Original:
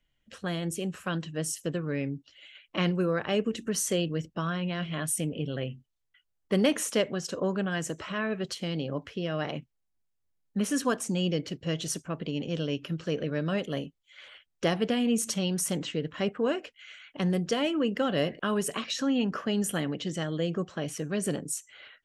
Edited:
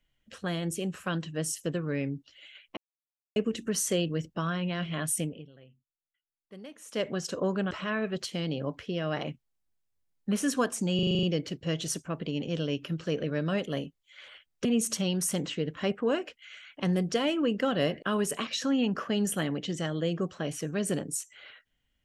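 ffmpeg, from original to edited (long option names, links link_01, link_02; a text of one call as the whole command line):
ffmpeg -i in.wav -filter_complex "[0:a]asplit=14[link_01][link_02][link_03][link_04][link_05][link_06][link_07][link_08][link_09][link_10][link_11][link_12][link_13][link_14];[link_01]atrim=end=2.77,asetpts=PTS-STARTPTS,afade=type=out:start_time=2.766:duration=0.004:curve=hsin[link_15];[link_02]atrim=start=2.77:end=3.36,asetpts=PTS-STARTPTS,volume=0[link_16];[link_03]atrim=start=3.36:end=5.54,asetpts=PTS-STARTPTS,afade=type=in:duration=0.004:curve=hsin,afade=type=out:start_time=1.86:duration=0.32:curve=qua:silence=0.0841395[link_17];[link_04]atrim=start=5.54:end=6.76,asetpts=PTS-STARTPTS,volume=-21.5dB[link_18];[link_05]atrim=start=6.76:end=7.712,asetpts=PTS-STARTPTS,afade=type=in:duration=0.32:curve=qua:silence=0.0841395[link_19];[link_06]atrim=start=7.988:end=11.272[link_20];[link_07]atrim=start=11.228:end=11.272[link_21];[link_08]atrim=start=11.228:end=11.272[link_22];[link_09]atrim=start=11.228:end=11.272[link_23];[link_10]atrim=start=11.228:end=11.272[link_24];[link_11]atrim=start=11.228:end=11.272[link_25];[link_12]atrim=start=11.228:end=11.272[link_26];[link_13]atrim=start=11.228:end=14.652[link_27];[link_14]atrim=start=15.018[link_28];[link_15][link_16][link_17][link_18][link_19]concat=n=5:v=0:a=1[link_29];[link_29][link_20]acrossfade=duration=0.004:curve1=hsin:curve2=hsin[link_30];[link_30][link_21]acrossfade=duration=0.004:curve1=hsin:curve2=hsin[link_31];[link_31][link_22]acrossfade=duration=0.004:curve1=hsin:curve2=hsin[link_32];[link_32][link_23]acrossfade=duration=0.004:curve1=hsin:curve2=hsin[link_33];[link_33][link_24]acrossfade=duration=0.004:curve1=hsin:curve2=hsin[link_34];[link_34][link_25]acrossfade=duration=0.004:curve1=hsin:curve2=hsin[link_35];[link_35][link_26]acrossfade=duration=0.004:curve1=hsin:curve2=hsin[link_36];[link_36][link_27]acrossfade=duration=0.004:curve1=hsin:curve2=hsin[link_37];[link_37][link_28]acrossfade=duration=0.004:curve1=hsin:curve2=hsin" out.wav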